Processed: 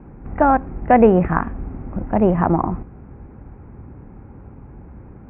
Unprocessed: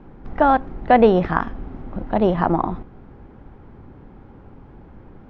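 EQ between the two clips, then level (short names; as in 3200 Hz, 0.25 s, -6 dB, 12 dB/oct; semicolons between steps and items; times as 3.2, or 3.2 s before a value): HPF 42 Hz; elliptic low-pass 2500 Hz, stop band 50 dB; low shelf 200 Hz +9 dB; 0.0 dB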